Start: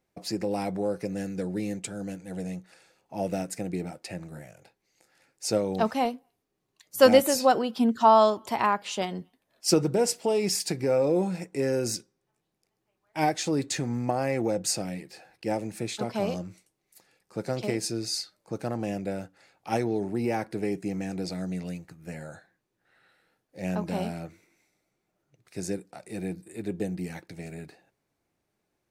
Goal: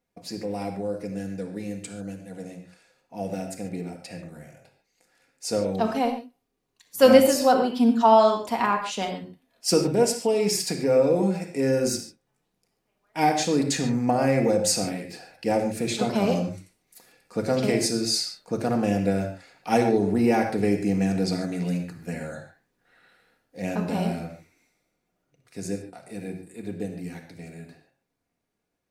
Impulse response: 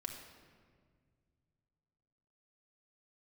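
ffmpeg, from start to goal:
-filter_complex "[0:a]dynaudnorm=framelen=360:gausssize=31:maxgain=11dB[link_01];[1:a]atrim=start_sample=2205,afade=type=out:start_time=0.2:duration=0.01,atrim=end_sample=9261[link_02];[link_01][link_02]afir=irnorm=-1:irlink=0"

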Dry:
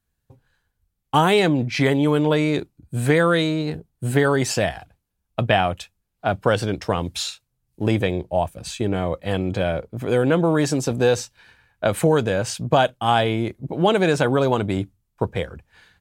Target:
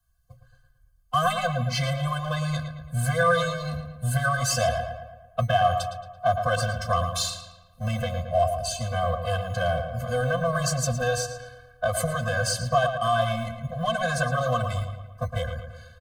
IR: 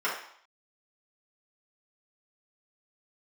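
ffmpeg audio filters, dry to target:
-filter_complex "[0:a]acrossover=split=100|4200[link_01][link_02][link_03];[link_01]acrusher=samples=16:mix=1:aa=0.000001:lfo=1:lforange=9.6:lforate=0.41[link_04];[link_04][link_02][link_03]amix=inputs=3:normalize=0,aecho=1:1:2.6:0.94,alimiter=limit=-8.5dB:level=0:latency=1:release=138,asplit=2[link_05][link_06];[link_06]asoftclip=type=tanh:threshold=-26.5dB,volume=-5dB[link_07];[link_05][link_07]amix=inputs=2:normalize=0,equalizer=frequency=100:width_type=o:width=0.67:gain=-6,equalizer=frequency=400:width_type=o:width=0.67:gain=-4,equalizer=frequency=2500:width_type=o:width=0.67:gain=-9,asplit=2[link_08][link_09];[link_09]adelay=112,lowpass=frequency=3200:poles=1,volume=-7dB,asplit=2[link_10][link_11];[link_11]adelay=112,lowpass=frequency=3200:poles=1,volume=0.54,asplit=2[link_12][link_13];[link_13]adelay=112,lowpass=frequency=3200:poles=1,volume=0.54,asplit=2[link_14][link_15];[link_15]adelay=112,lowpass=frequency=3200:poles=1,volume=0.54,asplit=2[link_16][link_17];[link_17]adelay=112,lowpass=frequency=3200:poles=1,volume=0.54,asplit=2[link_18][link_19];[link_19]adelay=112,lowpass=frequency=3200:poles=1,volume=0.54,asplit=2[link_20][link_21];[link_21]adelay=112,lowpass=frequency=3200:poles=1,volume=0.54[link_22];[link_08][link_10][link_12][link_14][link_16][link_18][link_20][link_22]amix=inputs=8:normalize=0,afftfilt=real='re*eq(mod(floor(b*sr/1024/250),2),0)':imag='im*eq(mod(floor(b*sr/1024/250),2),0)':win_size=1024:overlap=0.75"

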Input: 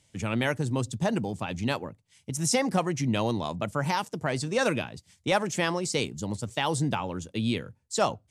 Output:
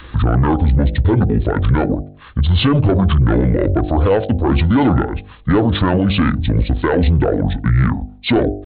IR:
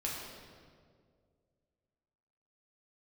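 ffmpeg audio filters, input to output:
-af "aresample=16000,asoftclip=type=tanh:threshold=-21.5dB,aresample=44100,acompressor=mode=upward:threshold=-43dB:ratio=2.5,lowpass=frequency=1700:poles=1,asetrate=24750,aresample=44100,atempo=1.7818,adynamicequalizer=threshold=0.00708:dfrequency=120:dqfactor=1.1:tfrequency=120:tqfactor=1.1:attack=5:release=100:ratio=0.375:range=2:mode=cutabove:tftype=bell,asetrate=42336,aresample=44100,bandreject=frequency=50.13:width_type=h:width=4,bandreject=frequency=100.26:width_type=h:width=4,bandreject=frequency=150.39:width_type=h:width=4,bandreject=frequency=200.52:width_type=h:width=4,bandreject=frequency=250.65:width_type=h:width=4,bandreject=frequency=300.78:width_type=h:width=4,bandreject=frequency=350.91:width_type=h:width=4,bandreject=frequency=401.04:width_type=h:width=4,bandreject=frequency=451.17:width_type=h:width=4,bandreject=frequency=501.3:width_type=h:width=4,bandreject=frequency=551.43:width_type=h:width=4,bandreject=frequency=601.56:width_type=h:width=4,bandreject=frequency=651.69:width_type=h:width=4,bandreject=frequency=701.82:width_type=h:width=4,bandreject=frequency=751.95:width_type=h:width=4,bandreject=frequency=802.08:width_type=h:width=4,alimiter=level_in=29.5dB:limit=-1dB:release=50:level=0:latency=1,volume=-6dB"

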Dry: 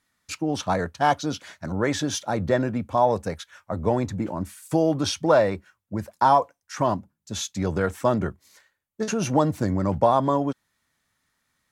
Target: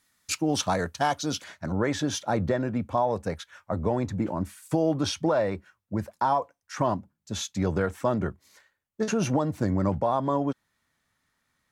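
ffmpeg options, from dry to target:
ffmpeg -i in.wav -af "alimiter=limit=-14dB:level=0:latency=1:release=314,asetnsamples=nb_out_samples=441:pad=0,asendcmd='1.44 highshelf g -4.5',highshelf=frequency=3700:gain=8" out.wav

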